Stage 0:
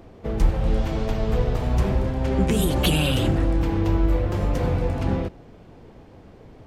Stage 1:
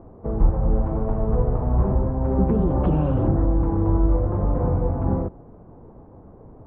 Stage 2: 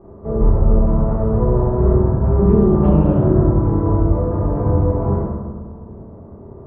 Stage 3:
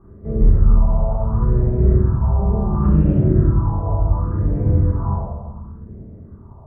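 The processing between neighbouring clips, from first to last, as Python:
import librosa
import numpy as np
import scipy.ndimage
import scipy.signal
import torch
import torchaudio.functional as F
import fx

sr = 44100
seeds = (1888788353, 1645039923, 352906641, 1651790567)

y1 = scipy.signal.sosfilt(scipy.signal.cheby1(3, 1.0, 1100.0, 'lowpass', fs=sr, output='sos'), x)
y1 = y1 * librosa.db_to_amplitude(1.5)
y2 = fx.rev_fdn(y1, sr, rt60_s=1.5, lf_ratio=1.55, hf_ratio=0.25, size_ms=15.0, drr_db=-9.0)
y2 = y2 * librosa.db_to_amplitude(-4.5)
y3 = fx.phaser_stages(y2, sr, stages=4, low_hz=310.0, high_hz=1000.0, hz=0.7, feedback_pct=45)
y3 = y3 * librosa.db_to_amplitude(-1.0)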